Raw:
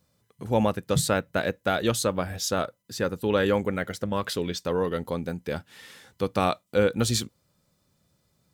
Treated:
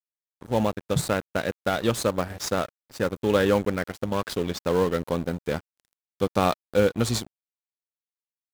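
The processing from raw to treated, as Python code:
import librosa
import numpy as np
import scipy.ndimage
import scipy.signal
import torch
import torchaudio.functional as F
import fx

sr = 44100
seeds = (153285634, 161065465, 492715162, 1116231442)

p1 = fx.sample_hold(x, sr, seeds[0], rate_hz=3600.0, jitter_pct=20)
p2 = x + F.gain(torch.from_numpy(p1), -10.0).numpy()
p3 = fx.rider(p2, sr, range_db=4, speed_s=2.0)
y = np.sign(p3) * np.maximum(np.abs(p3) - 10.0 ** (-35.0 / 20.0), 0.0)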